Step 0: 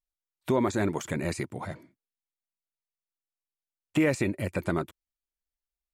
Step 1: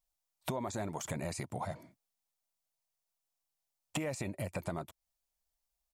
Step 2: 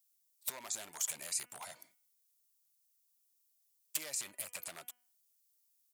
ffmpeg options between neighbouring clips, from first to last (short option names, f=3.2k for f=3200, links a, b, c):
-filter_complex "[0:a]firequalizer=gain_entry='entry(160,0);entry(350,-7);entry(670,6);entry(1500,-4);entry(5400,3)':delay=0.05:min_phase=1,asplit=2[a][b];[b]alimiter=limit=-23dB:level=0:latency=1:release=36,volume=-3dB[c];[a][c]amix=inputs=2:normalize=0,acompressor=threshold=-35dB:ratio=6"
-af "aeval=exprs='0.0266*(abs(mod(val(0)/0.0266+3,4)-2)-1)':c=same,aderivative,bandreject=f=245.4:t=h:w=4,bandreject=f=490.8:t=h:w=4,bandreject=f=736.2:t=h:w=4,bandreject=f=981.6:t=h:w=4,bandreject=f=1.227k:t=h:w=4,bandreject=f=1.4724k:t=h:w=4,bandreject=f=1.7178k:t=h:w=4,bandreject=f=1.9632k:t=h:w=4,bandreject=f=2.2086k:t=h:w=4,bandreject=f=2.454k:t=h:w=4,bandreject=f=2.6994k:t=h:w=4,bandreject=f=2.9448k:t=h:w=4,bandreject=f=3.1902k:t=h:w=4,volume=9dB"